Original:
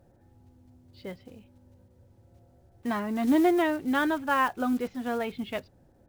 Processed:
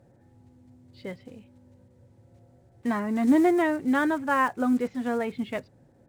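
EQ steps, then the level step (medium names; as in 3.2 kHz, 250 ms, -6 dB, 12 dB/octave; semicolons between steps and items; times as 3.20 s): dynamic bell 3.3 kHz, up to -6 dB, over -48 dBFS, Q 1.2; graphic EQ 125/250/500/1000/2000/4000/8000 Hz +12/+8/+8/+6/+10/+5/+10 dB; -8.5 dB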